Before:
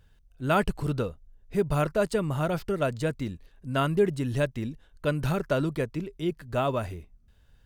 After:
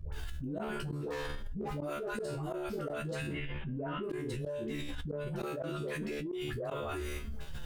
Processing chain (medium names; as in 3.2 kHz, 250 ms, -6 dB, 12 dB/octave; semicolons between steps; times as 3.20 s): 0.91–1.61 s: self-modulated delay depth 0.6 ms; 3.11–3.91 s: elliptic low-pass 3.1 kHz; 5.44–5.99 s: bass shelf 140 Hz -10.5 dB; de-hum 139.7 Hz, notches 36; dynamic bell 400 Hz, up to +7 dB, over -41 dBFS, Q 1.4; phase dispersion highs, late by 127 ms, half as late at 660 Hz; flange 0.45 Hz, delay 1.7 ms, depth 4.8 ms, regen +21%; saturation -15.5 dBFS, distortion -22 dB; tremolo saw up 3.1 Hz, depth 80%; feedback comb 73 Hz, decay 0.28 s, harmonics all, mix 100%; inverted gate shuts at -31 dBFS, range -24 dB; level flattener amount 100%